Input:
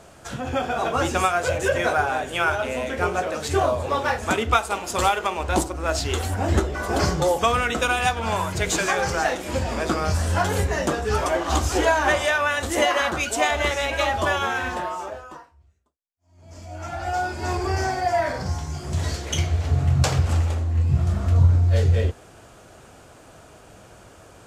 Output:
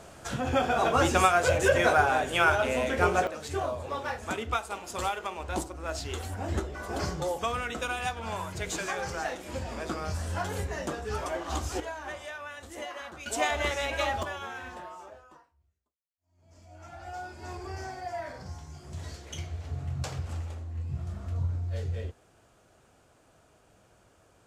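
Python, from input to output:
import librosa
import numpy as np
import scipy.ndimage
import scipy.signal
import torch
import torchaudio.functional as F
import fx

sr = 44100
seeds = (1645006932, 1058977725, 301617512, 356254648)

y = fx.gain(x, sr, db=fx.steps((0.0, -1.0), (3.27, -10.5), (11.8, -19.0), (13.26, -6.5), (14.23, -14.5)))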